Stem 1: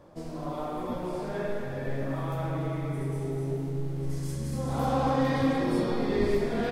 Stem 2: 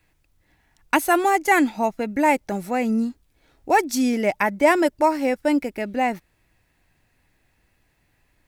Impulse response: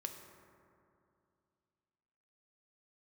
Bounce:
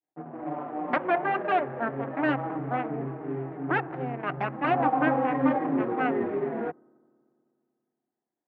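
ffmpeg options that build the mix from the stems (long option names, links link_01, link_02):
-filter_complex "[0:a]equalizer=frequency=670:width_type=o:width=0.23:gain=-5,acrusher=bits=5:mix=0:aa=0.5,asplit=2[link_01][link_02];[link_02]adelay=5.6,afreqshift=-2.9[link_03];[link_01][link_03]amix=inputs=2:normalize=1,volume=0.5dB,asplit=2[link_04][link_05];[link_05]volume=-21dB[link_06];[1:a]highpass=frequency=500:poles=1,adynamicequalizer=threshold=0.0251:dfrequency=1200:dqfactor=0.83:tfrequency=1200:tqfactor=0.83:attack=5:release=100:ratio=0.375:range=2:mode=cutabove:tftype=bell,aeval=exprs='0.668*(cos(1*acos(clip(val(0)/0.668,-1,1)))-cos(1*PI/2))+0.266*(cos(3*acos(clip(val(0)/0.668,-1,1)))-cos(3*PI/2))+0.119*(cos(8*acos(clip(val(0)/0.668,-1,1)))-cos(8*PI/2))':channel_layout=same,volume=-5.5dB,asplit=2[link_07][link_08];[link_08]volume=-4.5dB[link_09];[2:a]atrim=start_sample=2205[link_10];[link_06][link_09]amix=inputs=2:normalize=0[link_11];[link_11][link_10]afir=irnorm=-1:irlink=0[link_12];[link_04][link_07][link_12]amix=inputs=3:normalize=0,adynamicsmooth=sensitivity=5:basefreq=960,highpass=frequency=140:width=0.5412,highpass=frequency=140:width=1.3066,equalizer=frequency=200:width_type=q:width=4:gain=-9,equalizer=frequency=290:width_type=q:width=4:gain=6,equalizer=frequency=740:width_type=q:width=4:gain=9,lowpass=frequency=2100:width=0.5412,lowpass=frequency=2100:width=1.3066"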